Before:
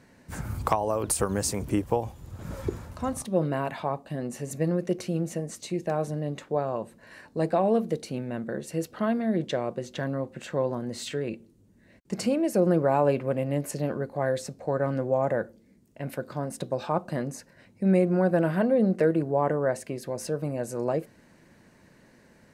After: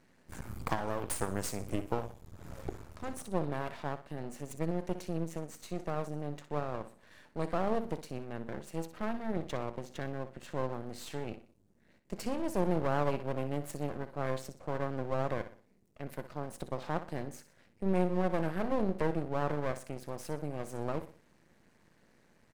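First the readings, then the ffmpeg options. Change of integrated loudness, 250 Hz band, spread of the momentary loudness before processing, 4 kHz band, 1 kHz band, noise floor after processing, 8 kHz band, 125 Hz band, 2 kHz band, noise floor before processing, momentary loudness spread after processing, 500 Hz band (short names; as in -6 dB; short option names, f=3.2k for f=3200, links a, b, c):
-9.0 dB, -9.0 dB, 12 LU, -8.0 dB, -6.5 dB, -67 dBFS, -10.5 dB, -7.5 dB, -6.0 dB, -58 dBFS, 13 LU, -9.5 dB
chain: -af "aecho=1:1:61|122|183|244:0.266|0.0984|0.0364|0.0135,aeval=exprs='max(val(0),0)':c=same,volume=-5.5dB"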